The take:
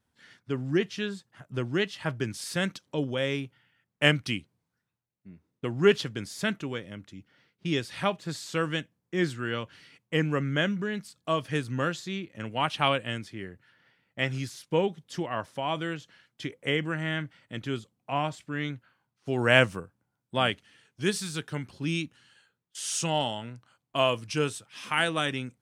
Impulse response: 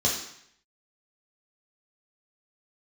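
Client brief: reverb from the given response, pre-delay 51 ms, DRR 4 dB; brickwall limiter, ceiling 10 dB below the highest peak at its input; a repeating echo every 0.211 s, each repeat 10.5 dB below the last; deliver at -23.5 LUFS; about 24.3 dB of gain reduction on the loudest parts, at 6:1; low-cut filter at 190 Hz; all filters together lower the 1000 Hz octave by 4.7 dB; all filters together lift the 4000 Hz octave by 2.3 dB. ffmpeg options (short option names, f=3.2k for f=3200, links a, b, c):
-filter_complex "[0:a]highpass=190,equalizer=f=1k:t=o:g=-6.5,equalizer=f=4k:t=o:g=4,acompressor=threshold=-43dB:ratio=6,alimiter=level_in=11dB:limit=-24dB:level=0:latency=1,volume=-11dB,aecho=1:1:211|422|633:0.299|0.0896|0.0269,asplit=2[a][b];[1:a]atrim=start_sample=2205,adelay=51[c];[b][c]afir=irnorm=-1:irlink=0,volume=-15dB[d];[a][d]amix=inputs=2:normalize=0,volume=22dB"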